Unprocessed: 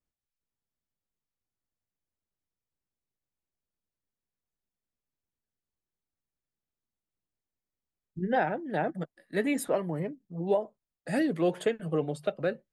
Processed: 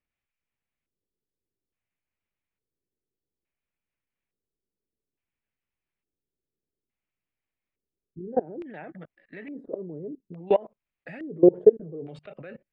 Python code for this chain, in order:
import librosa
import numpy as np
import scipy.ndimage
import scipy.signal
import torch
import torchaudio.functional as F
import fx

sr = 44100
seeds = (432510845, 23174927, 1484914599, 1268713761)

y = fx.level_steps(x, sr, step_db=24)
y = fx.filter_lfo_lowpass(y, sr, shape='square', hz=0.58, low_hz=410.0, high_hz=2400.0, q=3.2)
y = F.gain(torch.from_numpy(y), 6.5).numpy()